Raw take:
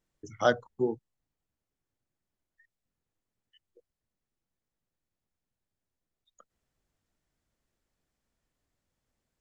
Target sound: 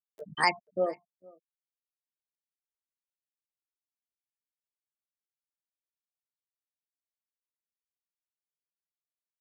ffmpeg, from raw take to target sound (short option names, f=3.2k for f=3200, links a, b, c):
-filter_complex "[0:a]afftfilt=real='re*gte(hypot(re,im),0.0355)':imag='im*gte(hypot(re,im),0.0355)':win_size=1024:overlap=0.75,asplit=2[a][b];[b]acompressor=mode=upward:threshold=-30dB:ratio=2.5,volume=1.5dB[c];[a][c]amix=inputs=2:normalize=0,alimiter=limit=-9dB:level=0:latency=1:release=223,asplit=2[d][e];[e]adelay=454.8,volume=-25dB,highshelf=f=4k:g=-10.2[f];[d][f]amix=inputs=2:normalize=0,crystalizer=i=9:c=0,asetrate=64194,aresample=44100,atempo=0.686977,volume=-8dB"